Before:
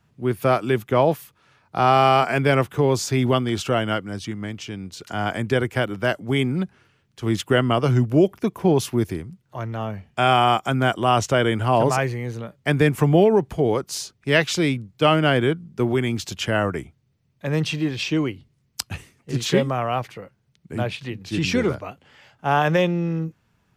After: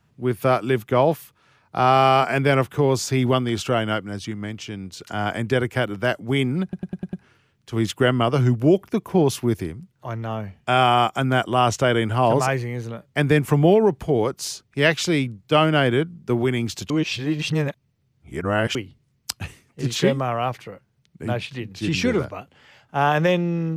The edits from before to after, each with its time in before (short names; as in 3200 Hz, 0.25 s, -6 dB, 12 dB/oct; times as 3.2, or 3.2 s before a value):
6.63 stutter 0.10 s, 6 plays
16.4–18.25 reverse